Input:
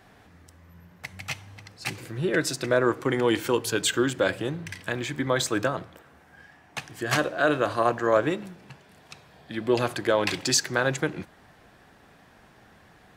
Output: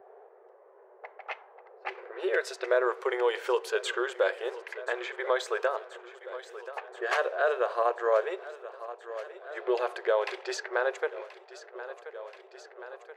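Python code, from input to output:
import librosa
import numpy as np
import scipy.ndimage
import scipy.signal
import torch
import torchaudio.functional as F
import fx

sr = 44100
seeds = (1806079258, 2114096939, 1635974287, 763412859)

y = fx.lowpass(x, sr, hz=fx.steps((0.0, 1700.0), (7.35, 1000.0)), slope=6)
y = fx.env_lowpass(y, sr, base_hz=470.0, full_db=-25.0)
y = fx.brickwall_highpass(y, sr, low_hz=370.0)
y = fx.echo_feedback(y, sr, ms=1030, feedback_pct=58, wet_db=-20)
y = fx.band_squash(y, sr, depth_pct=40)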